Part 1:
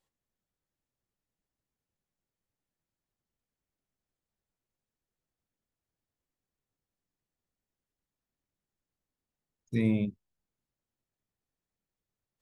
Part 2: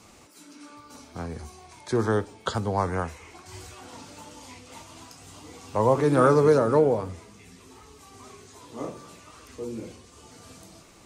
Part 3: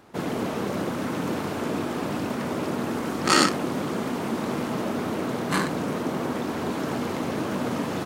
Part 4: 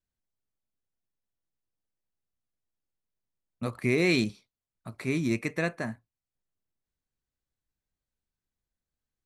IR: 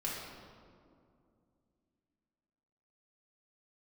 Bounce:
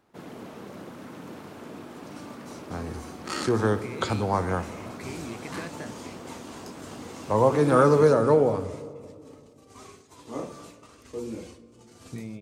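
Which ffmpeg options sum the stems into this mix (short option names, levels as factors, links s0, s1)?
-filter_complex "[0:a]adelay=2400,volume=1.06[s0];[1:a]agate=range=0.0794:threshold=0.00447:ratio=16:detection=peak,adelay=1550,volume=0.891,asplit=2[s1][s2];[s2]volume=0.2[s3];[2:a]volume=0.211[s4];[3:a]volume=0.668[s5];[s0][s5]amix=inputs=2:normalize=0,acompressor=threshold=0.0178:ratio=6,volume=1[s6];[4:a]atrim=start_sample=2205[s7];[s3][s7]afir=irnorm=-1:irlink=0[s8];[s1][s4][s6][s8]amix=inputs=4:normalize=0"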